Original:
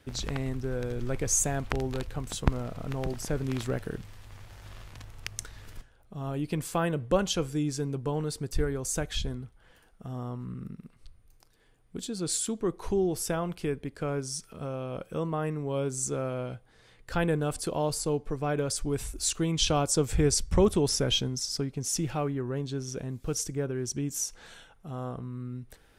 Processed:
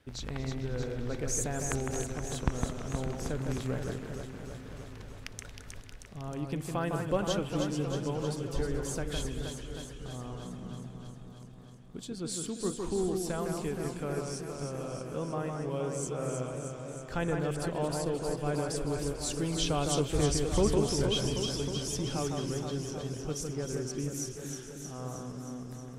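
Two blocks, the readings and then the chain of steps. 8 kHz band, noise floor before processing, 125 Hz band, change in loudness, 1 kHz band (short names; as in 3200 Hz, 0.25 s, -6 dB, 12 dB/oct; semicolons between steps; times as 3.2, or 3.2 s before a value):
-5.5 dB, -60 dBFS, -2.5 dB, -3.5 dB, -2.5 dB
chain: high shelf 6300 Hz -4.5 dB; echo with dull and thin repeats by turns 0.157 s, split 2500 Hz, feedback 83%, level -4 dB; warbling echo 0.224 s, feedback 66%, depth 208 cents, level -14 dB; gain -5 dB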